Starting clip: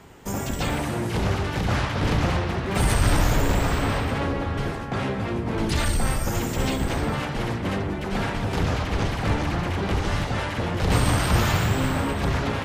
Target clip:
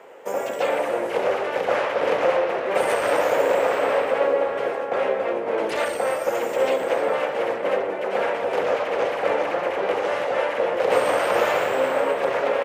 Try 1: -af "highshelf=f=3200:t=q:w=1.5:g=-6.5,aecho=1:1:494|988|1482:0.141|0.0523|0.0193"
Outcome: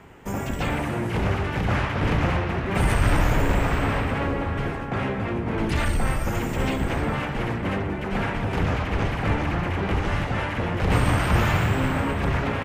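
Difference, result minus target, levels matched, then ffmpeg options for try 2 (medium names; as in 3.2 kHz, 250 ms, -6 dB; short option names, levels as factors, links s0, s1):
500 Hz band -8.0 dB
-af "highpass=f=520:t=q:w=5.3,highshelf=f=3200:t=q:w=1.5:g=-6.5,aecho=1:1:494|988|1482:0.141|0.0523|0.0193"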